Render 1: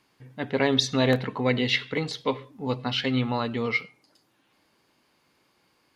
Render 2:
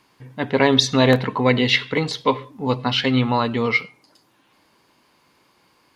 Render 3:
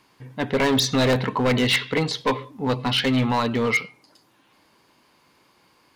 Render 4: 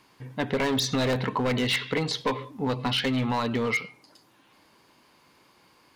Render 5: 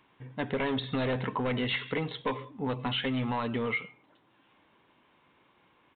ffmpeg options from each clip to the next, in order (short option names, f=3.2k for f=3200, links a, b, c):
-af "equalizer=f=1k:t=o:w=0.26:g=5.5,volume=6.5dB"
-af "asoftclip=type=hard:threshold=-15.5dB"
-af "acompressor=threshold=-23dB:ratio=6"
-af "aresample=8000,aresample=44100,volume=-4.5dB"